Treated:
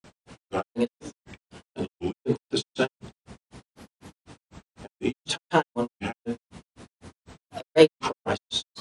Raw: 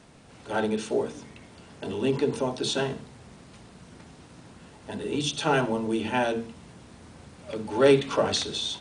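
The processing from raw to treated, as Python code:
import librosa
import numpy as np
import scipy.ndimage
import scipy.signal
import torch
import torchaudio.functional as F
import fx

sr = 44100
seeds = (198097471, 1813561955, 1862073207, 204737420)

y = fx.granulator(x, sr, seeds[0], grain_ms=132.0, per_s=4.0, spray_ms=100.0, spread_st=3)
y = y * librosa.db_to_amplitude(5.5)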